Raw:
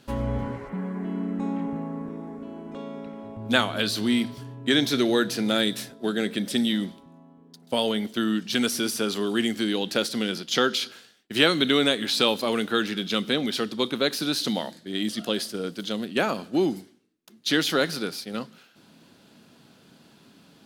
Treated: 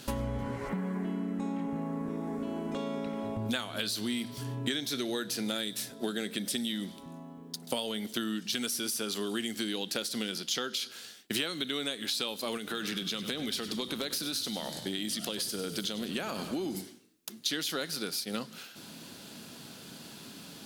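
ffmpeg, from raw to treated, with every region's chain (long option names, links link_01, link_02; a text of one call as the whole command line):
ffmpeg -i in.wav -filter_complex "[0:a]asettb=1/sr,asplit=3[link_01][link_02][link_03];[link_01]atrim=end=12.574[link_04];[link_02]atrim=start=12.57:end=16.75,asetpts=PTS-STARTPTS,afade=type=in:duration=0.004:curve=qsin,afade=type=out:start_time=4.176:duration=0.004:curve=qsin,acompressor=threshold=-31dB:ratio=3:attack=3.2:release=140:knee=1:detection=peak,aeval=exprs='0.0944*(abs(mod(val(0)/0.0944+3,4)-2)-1)':channel_layout=same,asplit=7[link_05][link_06][link_07][link_08][link_09][link_10][link_11];[link_06]adelay=98,afreqshift=-30,volume=-13.5dB[link_12];[link_07]adelay=196,afreqshift=-60,volume=-18.4dB[link_13];[link_08]adelay=294,afreqshift=-90,volume=-23.3dB[link_14];[link_09]adelay=392,afreqshift=-120,volume=-28.1dB[link_15];[link_10]adelay=490,afreqshift=-150,volume=-33dB[link_16];[link_11]adelay=588,afreqshift=-180,volume=-37.9dB[link_17];[link_05][link_12][link_13][link_14][link_15][link_16][link_17]amix=inputs=7:normalize=0,atrim=end_sample=184338[link_18];[link_03]atrim=start=16.746[link_19];[link_04][link_18]acrossfade=duration=0.004:curve1=hsin:curve2=qsin[link_20];[link_20][link_19]acrossfade=duration=0.004:curve1=qsin:curve2=hsin,highshelf=frequency=4000:gain=11,acompressor=threshold=-36dB:ratio=8,volume=5dB" out.wav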